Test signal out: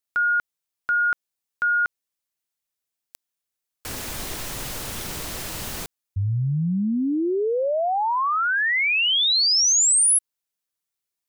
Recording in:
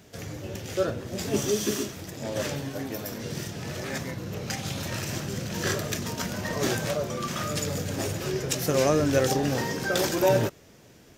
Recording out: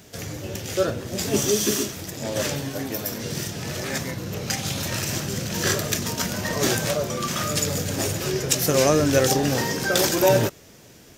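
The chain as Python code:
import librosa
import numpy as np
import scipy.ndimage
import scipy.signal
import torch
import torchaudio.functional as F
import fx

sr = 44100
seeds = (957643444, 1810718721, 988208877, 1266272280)

y = fx.high_shelf(x, sr, hz=3800.0, db=6.0)
y = F.gain(torch.from_numpy(y), 3.5).numpy()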